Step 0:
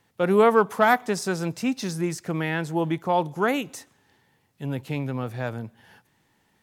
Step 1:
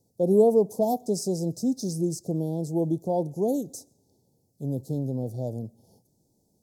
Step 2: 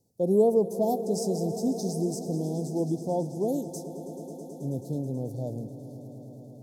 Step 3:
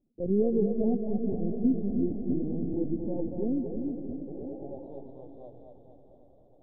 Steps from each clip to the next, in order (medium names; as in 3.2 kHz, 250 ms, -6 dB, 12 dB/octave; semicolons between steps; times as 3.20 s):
inverse Chebyshev band-stop 1.3–2.6 kHz, stop band 60 dB
echo with a slow build-up 108 ms, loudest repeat 5, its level -17 dB; trim -2.5 dB
band-pass sweep 240 Hz -> 1.5 kHz, 4.13–5.07 s; LPC vocoder at 8 kHz pitch kept; two-band feedback delay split 370 Hz, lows 315 ms, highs 231 ms, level -4.5 dB; trim +3 dB